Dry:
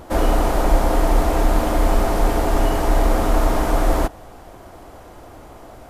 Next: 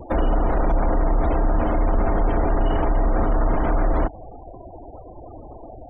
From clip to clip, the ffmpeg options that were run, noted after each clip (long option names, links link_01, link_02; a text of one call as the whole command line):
ffmpeg -i in.wav -filter_complex "[0:a]acrossover=split=250[link_01][link_02];[link_02]acompressor=threshold=-23dB:ratio=4[link_03];[link_01][link_03]amix=inputs=2:normalize=0,alimiter=limit=-15dB:level=0:latency=1:release=13,afftfilt=real='re*gte(hypot(re,im),0.0224)':imag='im*gte(hypot(re,im),0.0224)':win_size=1024:overlap=0.75,volume=3dB" out.wav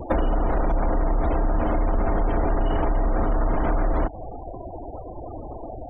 ffmpeg -i in.wav -af "acompressor=threshold=-22dB:ratio=6,volume=4dB" out.wav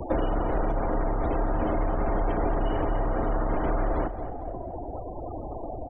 ffmpeg -i in.wav -filter_complex "[0:a]acrossover=split=270|590[link_01][link_02][link_03];[link_01]asoftclip=type=tanh:threshold=-24.5dB[link_04];[link_03]alimiter=level_in=4dB:limit=-24dB:level=0:latency=1:release=11,volume=-4dB[link_05];[link_04][link_02][link_05]amix=inputs=3:normalize=0,aecho=1:1:227|454|681|908:0.251|0.105|0.0443|0.0186" out.wav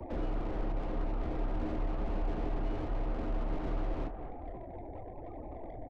ffmpeg -i in.wav -filter_complex "[0:a]flanger=delay=3.1:depth=7.1:regen=-62:speed=0.91:shape=triangular,acrossover=split=100|420[link_01][link_02][link_03];[link_03]asoftclip=type=tanh:threshold=-40dB[link_04];[link_01][link_02][link_04]amix=inputs=3:normalize=0,asplit=2[link_05][link_06];[link_06]adelay=26,volume=-12dB[link_07];[link_05][link_07]amix=inputs=2:normalize=0,volume=-4dB" out.wav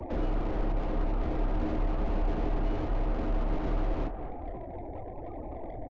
ffmpeg -i in.wav -af "aresample=16000,aresample=44100,volume=4.5dB" out.wav